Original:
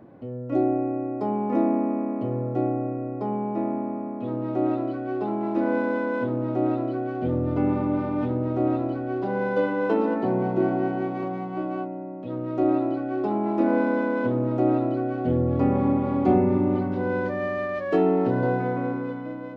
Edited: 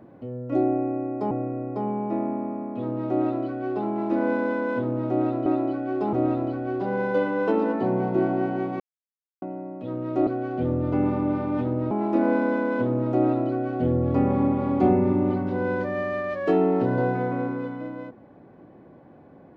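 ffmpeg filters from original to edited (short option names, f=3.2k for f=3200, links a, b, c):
-filter_complex "[0:a]asplit=8[a][b][c][d][e][f][g][h];[a]atrim=end=1.312[i];[b]atrim=start=2.758:end=6.912[j];[c]atrim=start=12.688:end=13.362[k];[d]atrim=start=8.548:end=11.22,asetpts=PTS-STARTPTS,afade=t=out:st=2.668:d=0.004:c=hsin[l];[e]atrim=start=11.22:end=11.84,asetpts=PTS-STARTPTS,volume=0[m];[f]atrim=start=11.84:end=12.692,asetpts=PTS-STARTPTS,afade=t=in:d=0.004:c=hsin[n];[g]atrim=start=6.908:end=8.552[o];[h]atrim=start=13.358[p];[i][j]acrossfade=d=0.004:c1=hsin:c2=hsin[q];[q][k]acrossfade=d=0.004:c1=hsin:c2=hsin[r];[l][m][n]concat=n=3:v=0:a=1[s];[r][s]acrossfade=d=0.004:c1=hsin:c2=hsin[t];[t][o]acrossfade=d=0.004:c1=hsin:c2=hsin[u];[u][p]acrossfade=d=0.004:c1=hsin:c2=hsin"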